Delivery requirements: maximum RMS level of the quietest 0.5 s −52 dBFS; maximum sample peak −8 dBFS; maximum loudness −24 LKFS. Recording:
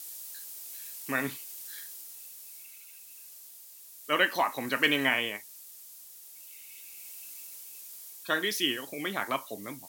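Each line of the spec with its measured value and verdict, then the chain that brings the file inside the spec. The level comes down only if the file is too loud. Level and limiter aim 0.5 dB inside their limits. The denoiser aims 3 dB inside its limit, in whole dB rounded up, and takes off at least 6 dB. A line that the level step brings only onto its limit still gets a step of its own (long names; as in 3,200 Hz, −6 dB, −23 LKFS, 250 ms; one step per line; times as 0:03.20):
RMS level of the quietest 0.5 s −50 dBFS: out of spec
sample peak −10.0 dBFS: in spec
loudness −31.0 LKFS: in spec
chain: broadband denoise 6 dB, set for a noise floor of −50 dBFS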